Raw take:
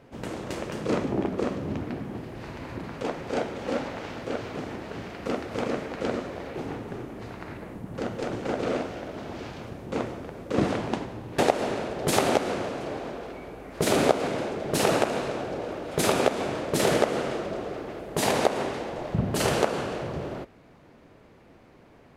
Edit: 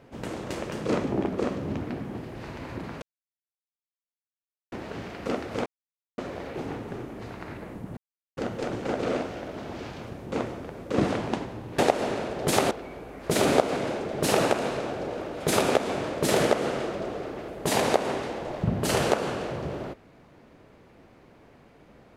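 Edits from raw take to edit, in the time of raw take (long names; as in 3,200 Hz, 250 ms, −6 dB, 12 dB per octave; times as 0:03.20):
0:03.02–0:04.72: silence
0:05.66–0:06.18: silence
0:07.97: splice in silence 0.40 s
0:12.31–0:13.22: remove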